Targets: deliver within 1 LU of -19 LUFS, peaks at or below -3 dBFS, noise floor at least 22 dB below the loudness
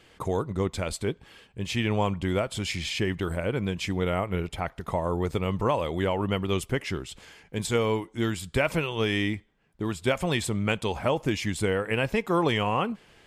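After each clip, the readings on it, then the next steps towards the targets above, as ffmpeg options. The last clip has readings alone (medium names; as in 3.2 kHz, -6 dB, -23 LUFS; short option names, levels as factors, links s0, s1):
loudness -28.0 LUFS; peak level -10.0 dBFS; loudness target -19.0 LUFS
-> -af "volume=2.82,alimiter=limit=0.708:level=0:latency=1"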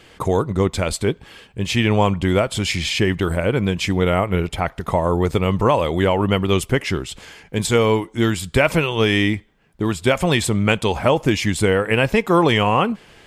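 loudness -19.0 LUFS; peak level -3.0 dBFS; noise floor -50 dBFS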